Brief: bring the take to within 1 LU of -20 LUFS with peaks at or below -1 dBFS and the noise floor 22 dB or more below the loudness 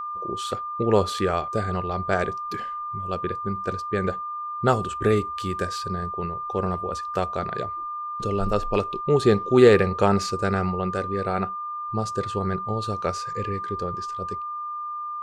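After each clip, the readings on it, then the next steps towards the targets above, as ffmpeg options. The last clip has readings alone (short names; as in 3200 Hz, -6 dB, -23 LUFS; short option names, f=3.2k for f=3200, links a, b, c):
steady tone 1200 Hz; tone level -29 dBFS; loudness -25.0 LUFS; peak -4.0 dBFS; loudness target -20.0 LUFS
-> -af "bandreject=f=1.2k:w=30"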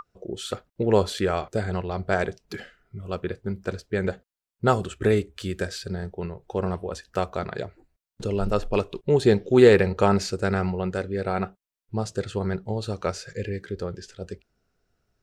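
steady tone none; loudness -25.5 LUFS; peak -4.0 dBFS; loudness target -20.0 LUFS
-> -af "volume=5.5dB,alimiter=limit=-1dB:level=0:latency=1"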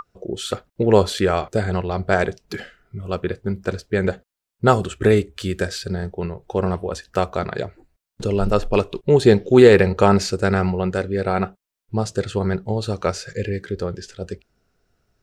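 loudness -20.5 LUFS; peak -1.0 dBFS; noise floor -85 dBFS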